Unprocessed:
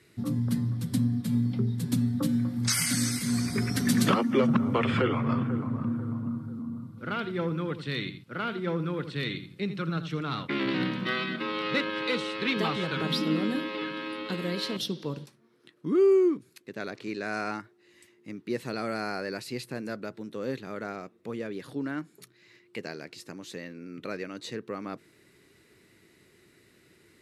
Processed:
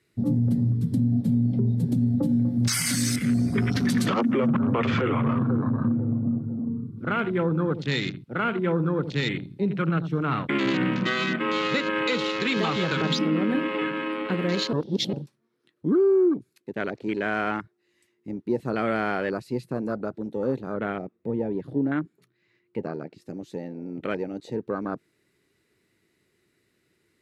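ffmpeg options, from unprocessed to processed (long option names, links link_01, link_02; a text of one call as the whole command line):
ffmpeg -i in.wav -filter_complex "[0:a]asettb=1/sr,asplit=3[link_01][link_02][link_03];[link_01]atrim=end=20.744[link_04];[link_02]atrim=start=20.74:end=23.22,asetpts=PTS-STARTPTS,afade=type=in:duration=0.004:curve=qsin,afade=type=out:start_time=2.476:duration=0.004:curve=qsin,bass=frequency=250:gain=3,treble=frequency=4000:gain=-10[link_05];[link_03]atrim=start=23.216[link_06];[link_04][link_05]acrossfade=duration=0.004:curve1=hsin:curve2=qsin[link_07];[link_07][link_06]acrossfade=duration=0.004:curve1=qsin:curve2=hsin,asplit=3[link_08][link_09][link_10];[link_08]atrim=end=14.732[link_11];[link_09]atrim=start=14.728:end=15.132,asetpts=PTS-STARTPTS,areverse[link_12];[link_10]atrim=start=15.128[link_13];[link_11][link_12]acrossfade=duration=0.004:curve1=hsin:curve2=hsin[link_14];[link_14][link_13]acrossfade=duration=0.004:curve1=hsin:curve2=hsin,afwtdn=0.0112,alimiter=limit=-22dB:level=0:latency=1:release=97,volume=7dB" out.wav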